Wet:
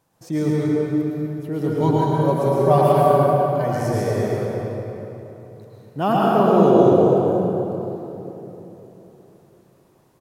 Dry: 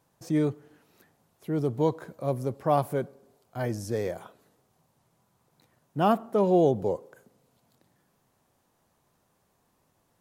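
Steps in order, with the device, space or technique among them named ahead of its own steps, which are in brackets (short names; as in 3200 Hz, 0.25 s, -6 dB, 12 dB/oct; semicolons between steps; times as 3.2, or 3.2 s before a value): 1.8–2.91 comb 5.2 ms, depth 95%; cave (echo 0.247 s -11.5 dB; reverb RT60 3.5 s, pre-delay 0.101 s, DRR -6.5 dB); gain +1.5 dB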